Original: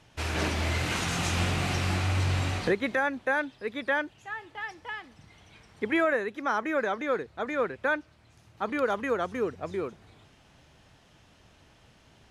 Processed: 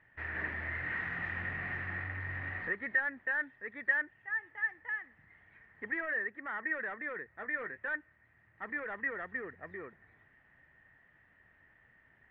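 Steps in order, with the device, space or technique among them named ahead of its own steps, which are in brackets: 7.28–7.89 doubler 19 ms -12 dB; overdriven synthesiser ladder filter (soft clip -25.5 dBFS, distortion -12 dB; ladder low-pass 1900 Hz, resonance 90%); 5.9–6.49 bell 11000 Hz -9.5 dB 2.3 oct

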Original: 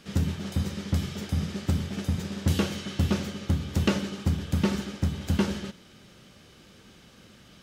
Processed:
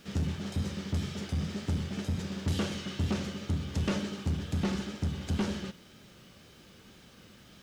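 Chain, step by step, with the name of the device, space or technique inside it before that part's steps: compact cassette (soft clip -21.5 dBFS, distortion -12 dB; LPF 9300 Hz 12 dB/oct; wow and flutter; white noise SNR 36 dB); gain -2 dB

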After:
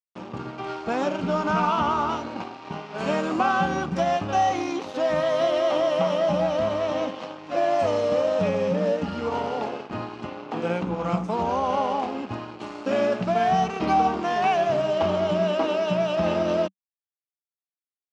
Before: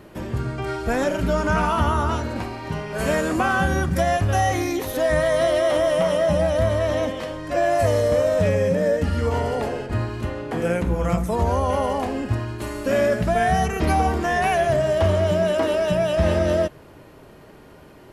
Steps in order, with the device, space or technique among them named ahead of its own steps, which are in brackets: blown loudspeaker (crossover distortion -34 dBFS; speaker cabinet 190–6000 Hz, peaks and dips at 190 Hz +7 dB, 300 Hz +3 dB, 820 Hz +7 dB, 1200 Hz +5 dB, 1800 Hz -6 dB, 2700 Hz +4 dB); gain -3 dB

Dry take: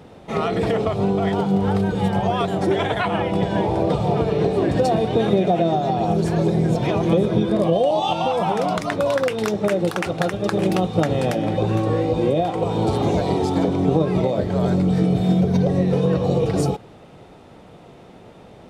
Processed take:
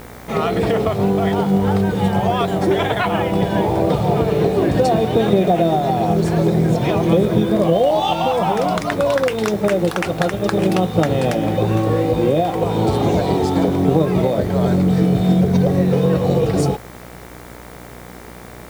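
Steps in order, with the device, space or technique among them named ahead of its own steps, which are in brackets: video cassette with head-switching buzz (buzz 60 Hz, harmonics 39, -42 dBFS -3 dB/oct; white noise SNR 30 dB); gain +3 dB

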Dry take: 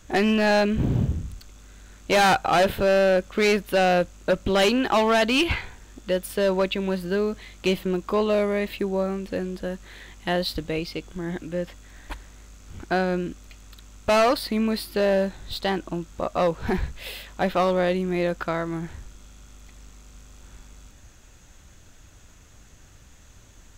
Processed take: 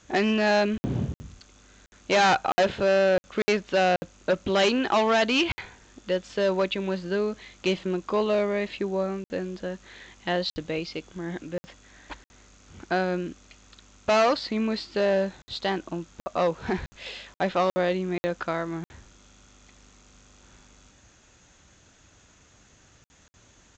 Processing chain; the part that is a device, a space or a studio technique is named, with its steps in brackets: call with lost packets (HPF 150 Hz 6 dB/oct; downsampling 16000 Hz; packet loss packets of 60 ms random); gain -1.5 dB

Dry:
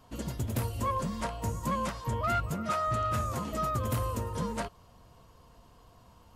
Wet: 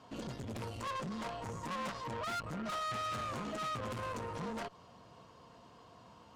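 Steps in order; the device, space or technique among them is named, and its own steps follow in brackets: valve radio (BPF 150–5800 Hz; tube stage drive 39 dB, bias 0.35; core saturation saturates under 200 Hz); gain +3.5 dB

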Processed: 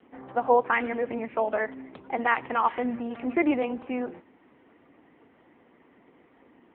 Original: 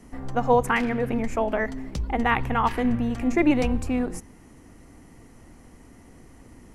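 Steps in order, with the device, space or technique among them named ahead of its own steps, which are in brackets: telephone (BPF 340–3300 Hz; AMR-NB 6.7 kbps 8000 Hz)

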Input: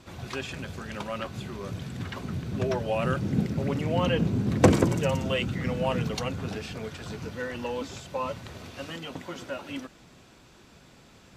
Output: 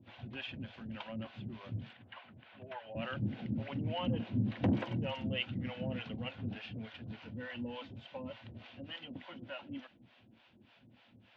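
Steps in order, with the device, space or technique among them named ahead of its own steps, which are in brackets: 1.93–2.95 three-band isolator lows -20 dB, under 580 Hz, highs -15 dB, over 3500 Hz; guitar amplifier with harmonic tremolo (harmonic tremolo 3.4 Hz, depth 100%, crossover 520 Hz; soft clip -19.5 dBFS, distortion -12 dB; speaker cabinet 100–3500 Hz, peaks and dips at 110 Hz +8 dB, 160 Hz -7 dB, 230 Hz +7 dB, 420 Hz -9 dB, 1200 Hz -8 dB, 3000 Hz +6 dB); gain -4.5 dB

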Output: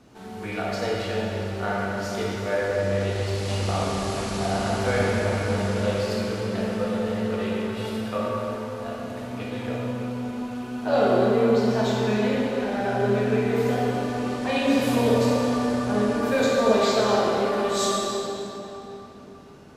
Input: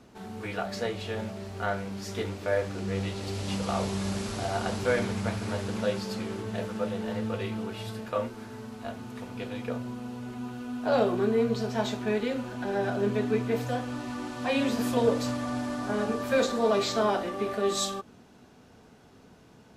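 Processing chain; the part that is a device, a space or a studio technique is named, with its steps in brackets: tunnel (flutter echo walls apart 9.8 m, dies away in 0.26 s; reverb RT60 3.5 s, pre-delay 21 ms, DRR -4 dB)

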